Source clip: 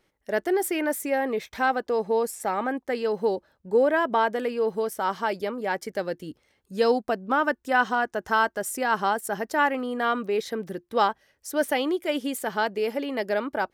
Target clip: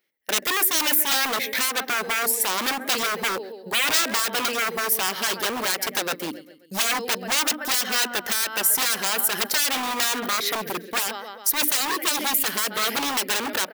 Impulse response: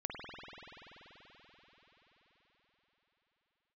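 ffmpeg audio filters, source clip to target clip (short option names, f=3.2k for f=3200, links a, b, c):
-filter_complex "[0:a]agate=range=-20dB:threshold=-44dB:ratio=16:detection=peak,bandreject=f=60:t=h:w=6,bandreject=f=120:t=h:w=6,bandreject=f=180:t=h:w=6,bandreject=f=240:t=h:w=6,bandreject=f=300:t=h:w=6,aecho=1:1:133|266|399|532:0.119|0.0559|0.0263|0.0123,asplit=2[a][b];[b]acompressor=threshold=-31dB:ratio=10,volume=2.5dB[c];[a][c]amix=inputs=2:normalize=0,equalizer=f=125:t=o:w=1:g=4,equalizer=f=250:t=o:w=1:g=7,equalizer=f=500:t=o:w=1:g=4,equalizer=f=1k:t=o:w=1:g=-4,equalizer=f=2k:t=o:w=1:g=8,equalizer=f=4k:t=o:w=1:g=3,equalizer=f=8k:t=o:w=1:g=-8,aeval=exprs='0.1*(abs(mod(val(0)/0.1+3,4)-2)-1)':c=same,aemphasis=mode=production:type=riaa,alimiter=limit=-8.5dB:level=0:latency=1:release=108"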